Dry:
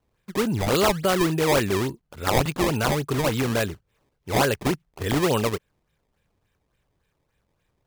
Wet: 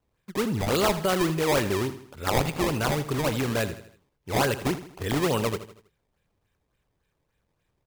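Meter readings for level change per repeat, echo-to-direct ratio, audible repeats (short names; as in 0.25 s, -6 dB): -7.0 dB, -12.0 dB, 4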